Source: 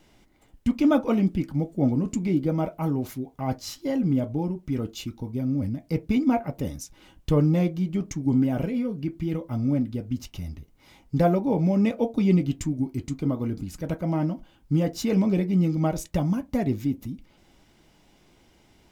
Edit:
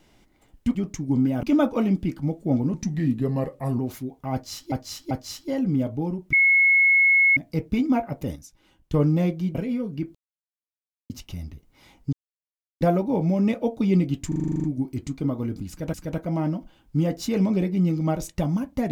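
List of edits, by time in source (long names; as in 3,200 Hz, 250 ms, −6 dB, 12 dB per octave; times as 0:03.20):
0:02.06–0:02.94: play speed 84%
0:03.48–0:03.87: repeat, 3 plays
0:04.70–0:05.74: beep over 2,180 Hz −14 dBFS
0:06.73–0:07.31: clip gain −8 dB
0:07.92–0:08.60: move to 0:00.75
0:09.20–0:10.15: silence
0:11.18: splice in silence 0.68 s
0:12.65: stutter 0.04 s, 10 plays
0:13.70–0:13.95: repeat, 2 plays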